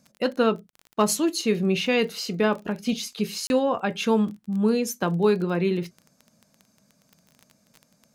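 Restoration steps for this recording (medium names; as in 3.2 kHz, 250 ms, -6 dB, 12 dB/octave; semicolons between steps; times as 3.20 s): clip repair -9.5 dBFS; de-click; interpolate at 0.70/3.47 s, 31 ms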